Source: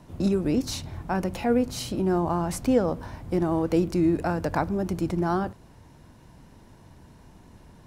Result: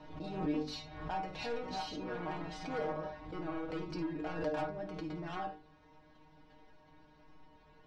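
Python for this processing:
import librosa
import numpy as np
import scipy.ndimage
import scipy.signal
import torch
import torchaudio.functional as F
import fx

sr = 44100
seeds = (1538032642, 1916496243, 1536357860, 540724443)

y = fx.reverse_delay(x, sr, ms=370, wet_db=-4.5, at=(0.72, 3.07))
y = scipy.signal.sosfilt(scipy.signal.butter(4, 4400.0, 'lowpass', fs=sr, output='sos'), y)
y = fx.peak_eq(y, sr, hz=130.0, db=-13.0, octaves=0.82)
y = fx.hum_notches(y, sr, base_hz=50, count=9)
y = fx.room_early_taps(y, sr, ms=(52, 72), db=(-10.0, -14.5))
y = 10.0 ** (-24.0 / 20.0) * np.tanh(y / 10.0 ** (-24.0 / 20.0))
y = fx.stiff_resonator(y, sr, f0_hz=150.0, decay_s=0.29, stiffness=0.002)
y = fx.pre_swell(y, sr, db_per_s=64.0)
y = F.gain(torch.from_numpy(y), 4.5).numpy()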